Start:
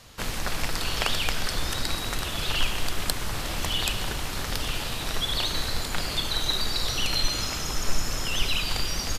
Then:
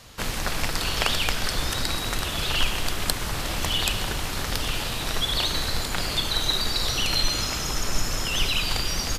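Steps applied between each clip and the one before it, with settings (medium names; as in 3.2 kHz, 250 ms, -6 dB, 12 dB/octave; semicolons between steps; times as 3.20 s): Chebyshev shaper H 6 -35 dB, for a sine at -3 dBFS; trim +2.5 dB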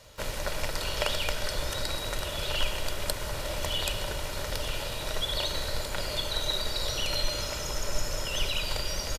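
peaking EQ 600 Hz +12.5 dB 0.27 oct; comb 2.1 ms, depth 35%; crackle 20 per s -37 dBFS; trim -7 dB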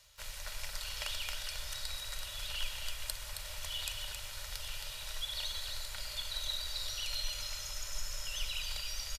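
amplifier tone stack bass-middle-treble 10-0-10; reverse; upward compressor, threshold -44 dBFS; reverse; delay 269 ms -6.5 dB; trim -5.5 dB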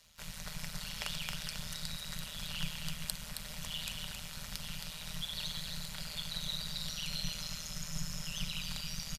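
AM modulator 160 Hz, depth 75%; trim +2.5 dB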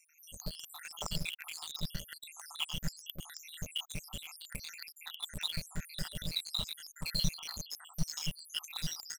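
random holes in the spectrogram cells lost 81%; in parallel at -6.5 dB: bit crusher 7-bit; on the sum: trim +4.5 dB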